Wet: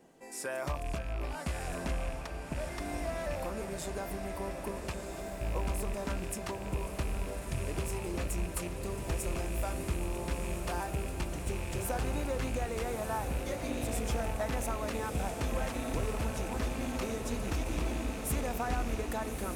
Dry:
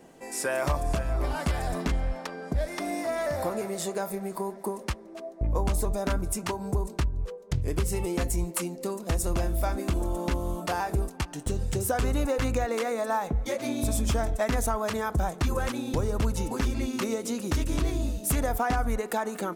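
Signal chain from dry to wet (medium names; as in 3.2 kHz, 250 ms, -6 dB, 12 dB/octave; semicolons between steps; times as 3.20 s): rattle on loud lows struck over -33 dBFS, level -27 dBFS; echo that smears into a reverb 1298 ms, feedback 73%, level -5 dB; trim -8.5 dB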